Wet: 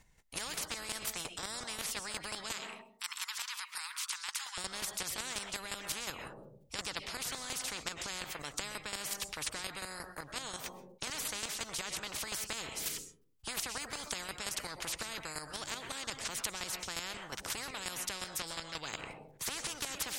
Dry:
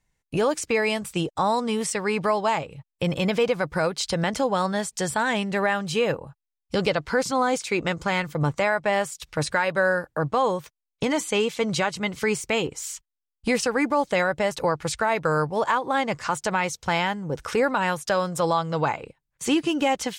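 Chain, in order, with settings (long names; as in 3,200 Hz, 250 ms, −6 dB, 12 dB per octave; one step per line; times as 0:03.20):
0:02.51–0:04.58: Butterworth high-pass 1,000 Hz 96 dB per octave
square-wave tremolo 5.6 Hz, depth 60%, duty 15%
convolution reverb RT60 0.55 s, pre-delay 85 ms, DRR 19.5 dB
every bin compressed towards the loudest bin 10 to 1
level −6 dB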